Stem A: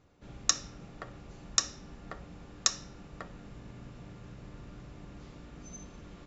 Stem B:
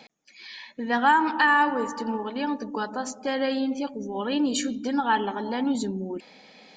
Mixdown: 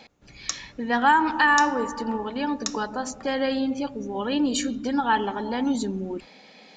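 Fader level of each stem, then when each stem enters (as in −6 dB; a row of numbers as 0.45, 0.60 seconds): −3.5, +1.0 decibels; 0.00, 0.00 seconds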